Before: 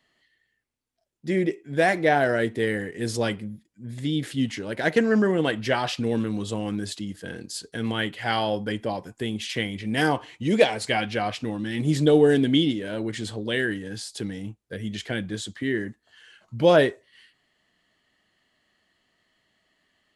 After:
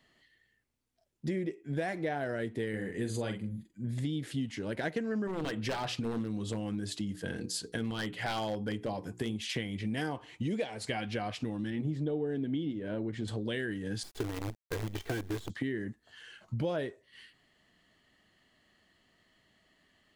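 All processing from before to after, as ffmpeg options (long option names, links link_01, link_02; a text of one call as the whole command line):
ffmpeg -i in.wav -filter_complex "[0:a]asettb=1/sr,asplit=3[link_01][link_02][link_03];[link_01]atrim=end=2.694[link_04];[link_02]atrim=start=2.69:end=3.88,asetpts=PTS-STARTPTS,afade=type=in:duration=0.004:curve=qsin,afade=type=out:start_time=1.186:duration=0.004:curve=qsin,asuperstop=centerf=5400:order=20:qfactor=6.4,asplit=2[link_05][link_06];[link_06]adelay=46,volume=-7dB[link_07];[link_05][link_07]amix=inputs=2:normalize=0,atrim=end_sample=52479[link_08];[link_03]atrim=start=3.876[link_09];[link_04][link_08]acrossfade=duration=0.004:curve1=hsin:curve2=qsin[link_10];[link_10][link_09]acrossfade=duration=0.004:curve1=qsin:curve2=hsin,asettb=1/sr,asplit=3[link_11][link_12][link_13];[link_11]atrim=end=5.274[link_14];[link_12]atrim=start=5.27:end=9.33,asetpts=PTS-STARTPTS,afade=type=in:duration=0.004:curve=qsin,afade=type=out:start_time=4.056:duration=0.004:curve=qsin,aeval=exprs='0.119*(abs(mod(val(0)/0.119+3,4)-2)-1)':channel_layout=same,bandreject=frequency=60:width_type=h:width=6,bandreject=frequency=120:width_type=h:width=6,bandreject=frequency=180:width_type=h:width=6,bandreject=frequency=240:width_type=h:width=6,bandreject=frequency=300:width_type=h:width=6,bandreject=frequency=360:width_type=h:width=6,bandreject=frequency=420:width_type=h:width=6,bandreject=frequency=480:width_type=h:width=6[link_15];[link_13]atrim=start=9.326[link_16];[link_14][link_15]acrossfade=duration=0.004:curve1=hsin:curve2=qsin[link_17];[link_17][link_16]acrossfade=duration=0.004:curve1=qsin:curve2=hsin,asettb=1/sr,asplit=3[link_18][link_19][link_20];[link_18]atrim=end=11.704[link_21];[link_19]atrim=start=11.7:end=13.28,asetpts=PTS-STARTPTS,afade=type=in:duration=0.004:curve=qsin,afade=type=out:start_time=1.576:duration=0.004:curve=qsin,lowpass=frequency=1400:poles=1,bandreject=frequency=60:width_type=h:width=6,bandreject=frequency=120:width_type=h:width=6,bandreject=frequency=180:width_type=h:width=6[link_22];[link_20]atrim=start=13.276[link_23];[link_21][link_22]acrossfade=duration=0.004:curve1=hsin:curve2=qsin[link_24];[link_24][link_23]acrossfade=duration=0.004:curve1=qsin:curve2=hsin,asettb=1/sr,asplit=3[link_25][link_26][link_27];[link_25]atrim=end=14.034[link_28];[link_26]atrim=start=14.03:end=15.5,asetpts=PTS-STARTPTS,afade=type=in:duration=0.004:curve=qsin,afade=type=out:start_time=1.466:duration=0.004:curve=qsin,lowpass=frequency=1300:poles=1,aecho=1:1:2.6:0.92,atrim=end_sample=64827,acrusher=bits=6:dc=4:mix=0:aa=0.000001[link_29];[link_27]atrim=start=15.496[link_30];[link_28][link_29]acrossfade=duration=0.004:curve1=hsin:curve2=qsin[link_31];[link_31][link_30]acrossfade=duration=0.004:curve1=qsin:curve2=hsin,lowshelf=frequency=340:gain=5.5,acompressor=threshold=-32dB:ratio=6" out.wav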